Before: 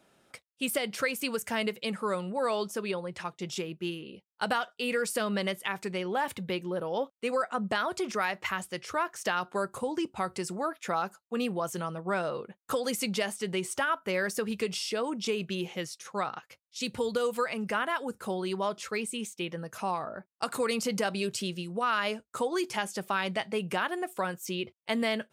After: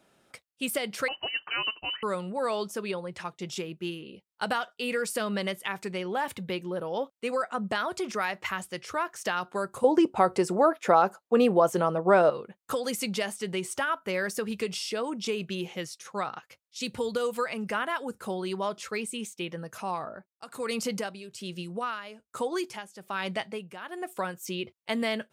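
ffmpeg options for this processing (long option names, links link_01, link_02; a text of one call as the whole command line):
ffmpeg -i in.wav -filter_complex "[0:a]asettb=1/sr,asplit=3[link_01][link_02][link_03];[link_01]atrim=end=1.084[link_04];[link_02]atrim=start=1.08:end=2.03,asetpts=PTS-STARTPTS,afade=type=in:duration=0.004:curve=qsin,afade=type=out:start_time=0.946:duration=0.004:curve=qsin,lowpass=frequency=2700:width_type=q:width=0.5098,lowpass=frequency=2700:width_type=q:width=0.6013,lowpass=frequency=2700:width_type=q:width=0.9,lowpass=frequency=2700:width_type=q:width=2.563,afreqshift=-3200[link_05];[link_03]atrim=start=2.026[link_06];[link_04][link_05]acrossfade=duration=0.004:curve1=hsin:curve2=qsin[link_07];[link_07][link_06]acrossfade=duration=0.004:curve1=qsin:curve2=hsin,asettb=1/sr,asplit=3[link_08][link_09][link_10];[link_08]atrim=end=9.844[link_11];[link_09]atrim=start=9.84:end=12.3,asetpts=PTS-STARTPTS,afade=type=in:duration=0.004:curve=qsin,afade=type=out:start_time=2.456:duration=0.004:curve=qsin,equalizer=frequency=550:width_type=o:width=2.7:gain=12.5[link_12];[link_10]atrim=start=12.296[link_13];[link_11][link_12]acrossfade=duration=0.004:curve1=hsin:curve2=qsin[link_14];[link_14][link_13]acrossfade=duration=0.004:curve1=qsin:curve2=hsin,asplit=3[link_15][link_16][link_17];[link_15]afade=type=out:start_time=19.81:duration=0.02[link_18];[link_16]tremolo=f=1.2:d=0.78,afade=type=in:start_time=19.81:duration=0.02,afade=type=out:start_time=24.35:duration=0.02[link_19];[link_17]afade=type=in:start_time=24.35:duration=0.02[link_20];[link_18][link_19][link_20]amix=inputs=3:normalize=0" out.wav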